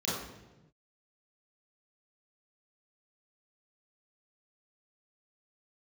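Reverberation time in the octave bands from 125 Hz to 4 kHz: 1.8, 1.3, 1.2, 0.95, 0.90, 0.80 s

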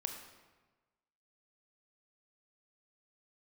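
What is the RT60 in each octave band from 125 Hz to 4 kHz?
1.4, 1.3, 1.3, 1.3, 1.1, 0.90 s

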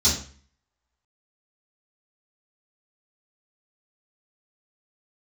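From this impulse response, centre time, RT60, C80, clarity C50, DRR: 35 ms, 0.45 s, 10.0 dB, 5.0 dB, -12.5 dB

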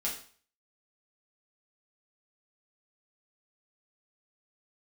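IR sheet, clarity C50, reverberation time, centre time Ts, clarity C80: 7.0 dB, 0.45 s, 27 ms, 11.0 dB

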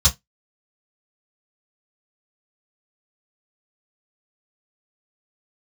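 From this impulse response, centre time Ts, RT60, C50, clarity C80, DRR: 13 ms, 0.15 s, 18.5 dB, 32.0 dB, -8.0 dB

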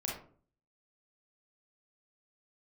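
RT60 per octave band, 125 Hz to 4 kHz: 0.65, 0.60, 0.50, 0.40, 0.30, 0.25 s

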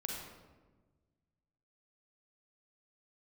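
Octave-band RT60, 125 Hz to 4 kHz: 2.2, 1.8, 1.5, 1.2, 0.95, 0.75 s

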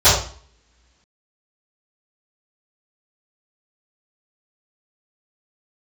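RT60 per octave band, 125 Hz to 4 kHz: 0.50, 1.3, 0.45, 0.50, 0.45, 0.45 s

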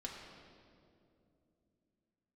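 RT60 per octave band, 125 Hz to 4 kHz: 3.8, 4.0, 3.2, 2.2, 1.7, 1.6 s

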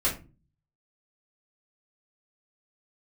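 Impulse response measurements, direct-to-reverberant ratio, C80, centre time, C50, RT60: -8.5 dB, 16.5 dB, 22 ms, 9.5 dB, not exponential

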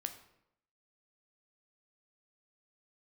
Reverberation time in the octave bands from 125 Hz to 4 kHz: 0.80, 0.85, 0.80, 0.75, 0.70, 0.55 s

